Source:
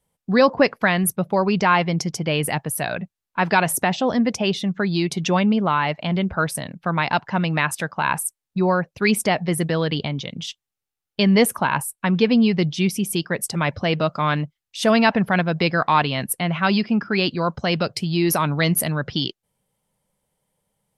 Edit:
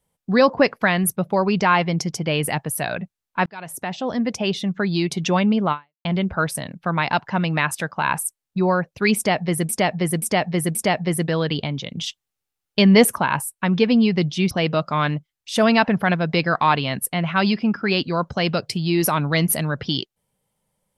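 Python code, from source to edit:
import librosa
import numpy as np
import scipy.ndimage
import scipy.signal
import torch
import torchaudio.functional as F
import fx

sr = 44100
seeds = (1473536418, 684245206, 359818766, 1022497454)

y = fx.edit(x, sr, fx.fade_in_span(start_s=3.46, length_s=1.51, curve='qsin'),
    fx.fade_out_span(start_s=5.72, length_s=0.33, curve='exp'),
    fx.repeat(start_s=9.16, length_s=0.53, count=4),
    fx.clip_gain(start_s=10.37, length_s=1.22, db=3.0),
    fx.cut(start_s=12.92, length_s=0.86), tone=tone)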